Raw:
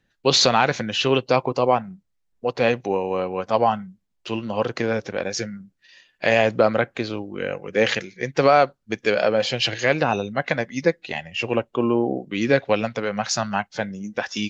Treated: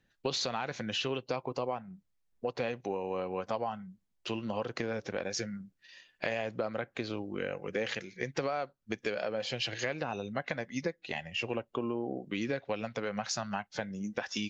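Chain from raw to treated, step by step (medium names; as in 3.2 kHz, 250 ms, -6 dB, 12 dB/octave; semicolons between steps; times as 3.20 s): compression 6:1, threshold -27 dBFS, peak gain reduction 15 dB; trim -4 dB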